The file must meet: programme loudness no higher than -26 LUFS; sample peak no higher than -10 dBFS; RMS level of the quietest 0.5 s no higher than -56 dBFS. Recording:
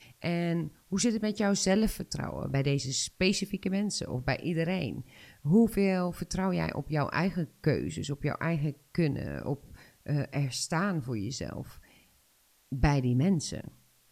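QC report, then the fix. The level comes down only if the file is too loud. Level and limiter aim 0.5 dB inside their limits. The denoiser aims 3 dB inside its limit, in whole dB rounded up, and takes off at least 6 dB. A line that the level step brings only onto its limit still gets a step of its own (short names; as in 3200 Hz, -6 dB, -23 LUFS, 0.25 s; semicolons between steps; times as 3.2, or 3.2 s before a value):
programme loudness -30.5 LUFS: OK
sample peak -11.5 dBFS: OK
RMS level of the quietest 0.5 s -66 dBFS: OK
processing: none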